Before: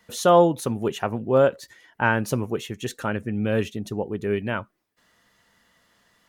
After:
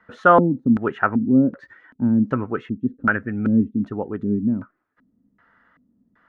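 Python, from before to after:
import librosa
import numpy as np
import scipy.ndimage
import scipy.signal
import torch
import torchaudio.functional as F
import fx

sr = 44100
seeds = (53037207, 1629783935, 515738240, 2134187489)

y = fx.dynamic_eq(x, sr, hz=1900.0, q=1.9, threshold_db=-42.0, ratio=4.0, max_db=6)
y = fx.filter_lfo_lowpass(y, sr, shape='square', hz=1.3, low_hz=240.0, high_hz=1500.0, q=3.7)
y = fx.small_body(y, sr, hz=(270.0, 1300.0), ring_ms=45, db=7)
y = y * 10.0 ** (-1.0 / 20.0)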